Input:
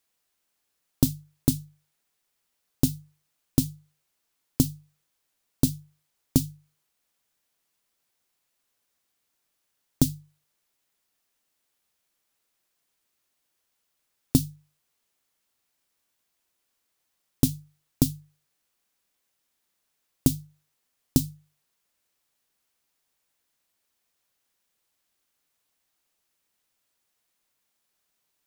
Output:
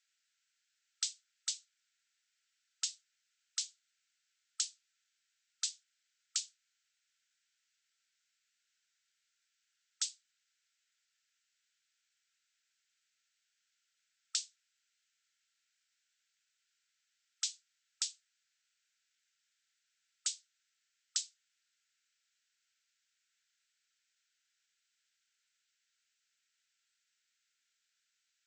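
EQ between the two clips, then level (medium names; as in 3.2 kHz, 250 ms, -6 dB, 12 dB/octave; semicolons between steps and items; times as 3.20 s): brick-wall FIR band-pass 1.3–8.2 kHz; 0.0 dB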